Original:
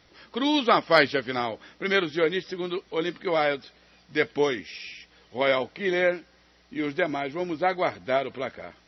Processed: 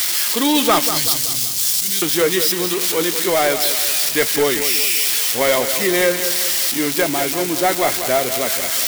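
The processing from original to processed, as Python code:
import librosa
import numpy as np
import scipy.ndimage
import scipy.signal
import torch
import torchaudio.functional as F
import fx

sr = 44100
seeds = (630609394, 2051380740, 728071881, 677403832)

p1 = x + 0.5 * 10.0 ** (-12.5 / 20.0) * np.diff(np.sign(x), prepend=np.sign(x[:1]))
p2 = fx.cheby1_bandstop(p1, sr, low_hz=120.0, high_hz=4900.0, order=2, at=(0.87, 2.02))
p3 = fx.leveller(p2, sr, passes=2)
y = p3 + fx.echo_feedback(p3, sr, ms=190, feedback_pct=47, wet_db=-10.0, dry=0)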